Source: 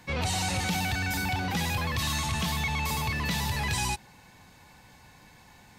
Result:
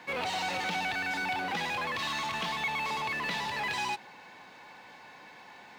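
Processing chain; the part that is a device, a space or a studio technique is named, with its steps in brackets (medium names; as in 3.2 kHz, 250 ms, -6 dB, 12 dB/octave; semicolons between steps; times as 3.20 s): phone line with mismatched companding (band-pass 360–3500 Hz; companding laws mixed up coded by mu); trim -1 dB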